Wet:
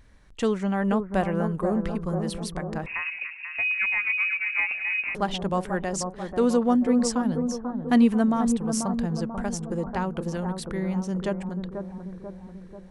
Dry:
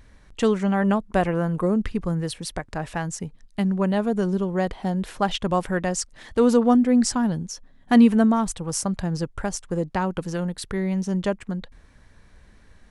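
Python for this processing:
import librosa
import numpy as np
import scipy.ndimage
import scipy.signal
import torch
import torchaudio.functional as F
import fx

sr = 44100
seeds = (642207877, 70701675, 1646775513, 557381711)

y = fx.echo_bbd(x, sr, ms=489, stages=4096, feedback_pct=56, wet_db=-6.5)
y = fx.freq_invert(y, sr, carrier_hz=2700, at=(2.86, 5.15))
y = y * 10.0 ** (-4.0 / 20.0)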